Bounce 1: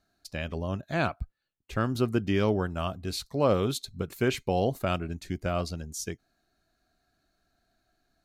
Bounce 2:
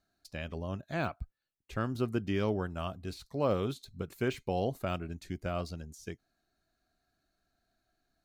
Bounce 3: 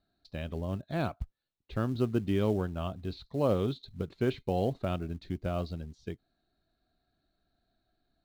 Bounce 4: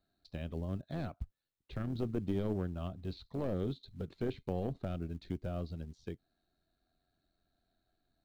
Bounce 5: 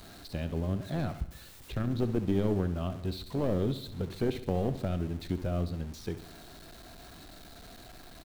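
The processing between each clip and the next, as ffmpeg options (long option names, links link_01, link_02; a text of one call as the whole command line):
ffmpeg -i in.wav -af "deesser=0.95,volume=-5.5dB" out.wav
ffmpeg -i in.wav -filter_complex "[0:a]lowpass=frequency=3900:width_type=q:width=4.6,tiltshelf=frequency=1400:gain=7.5,asplit=2[link_01][link_02];[link_02]acrusher=bits=5:mode=log:mix=0:aa=0.000001,volume=-5.5dB[link_03];[link_01][link_03]amix=inputs=2:normalize=0,volume=-7.5dB" out.wav
ffmpeg -i in.wav -filter_complex "[0:a]aeval=exprs='clip(val(0),-1,0.0355)':channel_layout=same,tremolo=f=89:d=0.462,acrossover=split=440[link_01][link_02];[link_02]acompressor=threshold=-49dB:ratio=2[link_03];[link_01][link_03]amix=inputs=2:normalize=0,volume=-1dB" out.wav
ffmpeg -i in.wav -af "aeval=exprs='val(0)+0.5*0.00355*sgn(val(0))':channel_layout=same,aecho=1:1:68|136|204|272|340|408:0.211|0.116|0.0639|0.0352|0.0193|0.0106,volume=5.5dB" out.wav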